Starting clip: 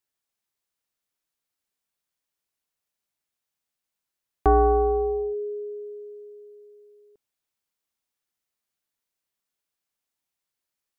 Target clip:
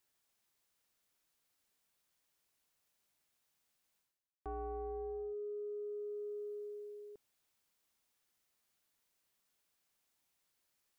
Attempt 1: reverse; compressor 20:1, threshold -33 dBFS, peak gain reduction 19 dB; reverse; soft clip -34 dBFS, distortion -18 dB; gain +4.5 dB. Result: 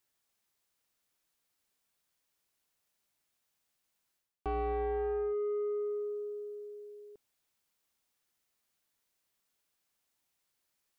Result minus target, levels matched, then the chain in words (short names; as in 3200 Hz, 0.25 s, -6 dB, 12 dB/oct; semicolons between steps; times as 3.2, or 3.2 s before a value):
compressor: peak gain reduction -11.5 dB
reverse; compressor 20:1, threshold -45 dBFS, peak gain reduction 30.5 dB; reverse; soft clip -34 dBFS, distortion -39 dB; gain +4.5 dB